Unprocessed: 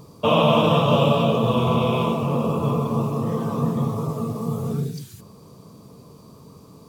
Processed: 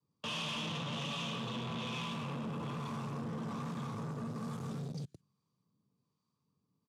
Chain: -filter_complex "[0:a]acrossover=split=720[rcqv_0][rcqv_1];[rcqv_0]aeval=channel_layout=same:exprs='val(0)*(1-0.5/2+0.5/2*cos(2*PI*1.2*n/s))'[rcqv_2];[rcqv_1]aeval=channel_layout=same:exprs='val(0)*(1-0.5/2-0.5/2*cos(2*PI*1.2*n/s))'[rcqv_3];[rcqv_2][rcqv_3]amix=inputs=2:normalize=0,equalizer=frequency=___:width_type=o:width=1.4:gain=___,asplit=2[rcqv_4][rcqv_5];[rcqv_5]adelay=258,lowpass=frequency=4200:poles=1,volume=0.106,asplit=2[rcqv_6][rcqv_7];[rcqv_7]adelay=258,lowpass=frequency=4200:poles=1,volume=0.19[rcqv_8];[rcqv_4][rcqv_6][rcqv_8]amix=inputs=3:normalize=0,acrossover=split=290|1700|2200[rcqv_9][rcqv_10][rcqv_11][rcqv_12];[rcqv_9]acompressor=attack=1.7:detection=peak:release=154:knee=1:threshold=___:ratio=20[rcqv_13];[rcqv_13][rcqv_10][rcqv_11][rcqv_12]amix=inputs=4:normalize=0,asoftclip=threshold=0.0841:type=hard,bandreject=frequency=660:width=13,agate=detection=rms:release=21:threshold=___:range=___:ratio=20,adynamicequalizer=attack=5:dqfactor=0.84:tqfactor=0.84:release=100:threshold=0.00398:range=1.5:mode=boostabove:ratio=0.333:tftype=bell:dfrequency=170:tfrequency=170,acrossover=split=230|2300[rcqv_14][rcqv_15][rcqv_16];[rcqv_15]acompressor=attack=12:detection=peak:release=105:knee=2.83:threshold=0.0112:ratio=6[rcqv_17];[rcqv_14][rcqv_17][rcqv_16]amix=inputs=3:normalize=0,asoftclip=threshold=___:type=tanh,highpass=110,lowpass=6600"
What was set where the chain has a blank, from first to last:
500, -10.5, 0.0178, 0.01, 0.0316, 0.0168